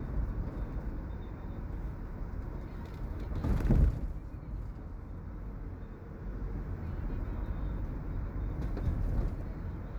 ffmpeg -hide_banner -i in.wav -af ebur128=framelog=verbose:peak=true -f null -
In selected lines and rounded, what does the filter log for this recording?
Integrated loudness:
  I:         -38.1 LUFS
  Threshold: -48.1 LUFS
Loudness range:
  LRA:         6.0 LU
  Threshold: -57.9 LUFS
  LRA low:   -41.9 LUFS
  LRA high:  -35.8 LUFS
True peak:
  Peak:      -14.7 dBFS